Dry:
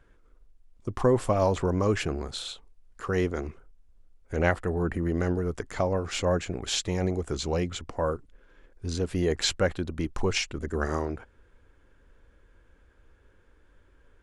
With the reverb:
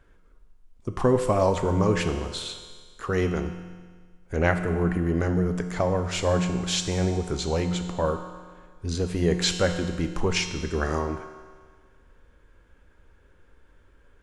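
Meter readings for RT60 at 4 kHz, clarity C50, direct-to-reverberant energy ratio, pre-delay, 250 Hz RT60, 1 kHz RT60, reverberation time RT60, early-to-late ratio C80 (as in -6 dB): 1.6 s, 8.0 dB, 6.0 dB, 6 ms, 1.6 s, 1.6 s, 1.6 s, 9.0 dB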